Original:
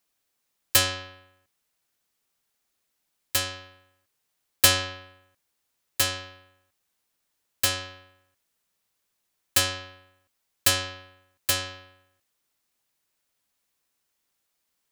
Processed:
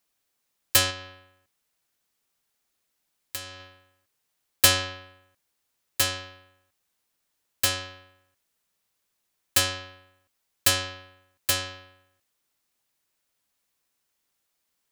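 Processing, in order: 0.90–3.60 s: compression 4:1, threshold -34 dBFS, peak gain reduction 12 dB

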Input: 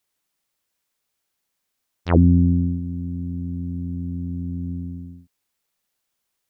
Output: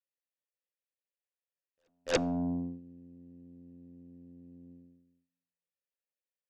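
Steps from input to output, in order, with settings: vowel filter e; in parallel at -7.5 dB: sine folder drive 20 dB, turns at -17.5 dBFS; on the sum: reverse echo 289 ms -23 dB; on a send at -20.5 dB: reverberation RT60 0.75 s, pre-delay 4 ms; on the sum: upward expansion 2.5:1, over -41 dBFS

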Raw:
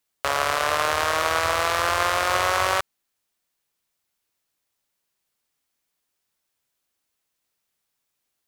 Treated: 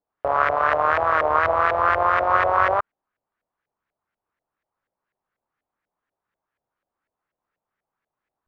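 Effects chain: LFO low-pass saw up 4.1 Hz 600–1900 Hz; warped record 33 1/3 rpm, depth 100 cents

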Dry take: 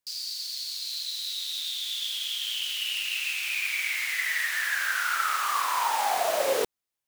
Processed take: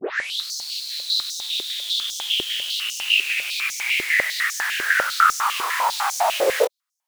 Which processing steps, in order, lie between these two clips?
tape start-up on the opening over 0.48 s; chorus 2.2 Hz, delay 18.5 ms, depth 6.8 ms; step-sequenced high-pass 10 Hz 380–6000 Hz; trim +5.5 dB

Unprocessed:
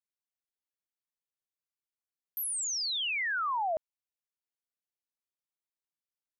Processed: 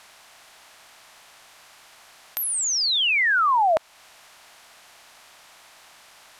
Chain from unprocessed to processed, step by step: spectral levelling over time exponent 0.6; treble shelf 7.1 kHz -9.5 dB; in parallel at +3 dB: compression, threshold -43 dBFS, peak gain reduction 14 dB; on the sum: trim +8.5 dB

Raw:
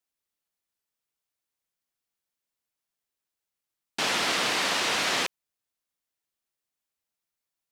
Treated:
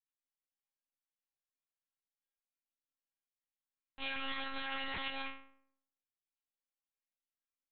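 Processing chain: cycle switcher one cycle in 3, muted; vibrato 1.2 Hz 8.1 cents; inharmonic resonator 290 Hz, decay 0.73 s, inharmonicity 0.008; monotone LPC vocoder at 8 kHz 270 Hz; trim +8 dB

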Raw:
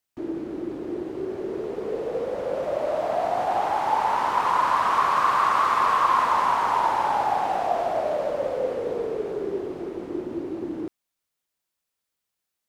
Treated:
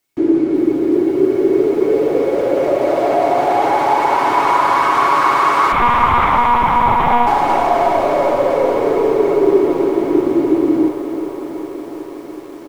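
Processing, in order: comb 7.2 ms, depth 54%; in parallel at 0 dB: peak limiter -18.5 dBFS, peak gain reduction 10 dB; on the sum: small resonant body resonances 340/2200 Hz, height 13 dB, ringing for 50 ms; on a send: thinning echo 524 ms, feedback 77%, high-pass 290 Hz, level -16 dB; on the sum: Schroeder reverb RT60 3.2 s, combs from 25 ms, DRR 16.5 dB; 5.72–7.27 s: monotone LPC vocoder at 8 kHz 240 Hz; bit-crushed delay 371 ms, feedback 80%, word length 7-bit, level -13 dB; trim +2.5 dB

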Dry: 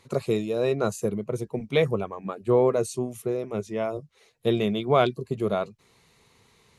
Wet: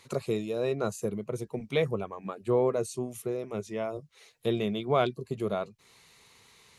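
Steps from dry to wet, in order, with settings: tape noise reduction on one side only encoder only; trim -5 dB

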